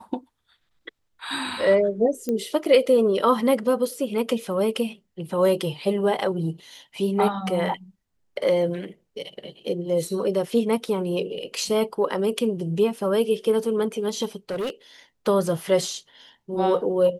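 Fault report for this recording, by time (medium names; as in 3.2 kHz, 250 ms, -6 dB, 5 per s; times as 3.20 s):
2.29 s: pop -15 dBFS
14.50–14.70 s: clipped -24 dBFS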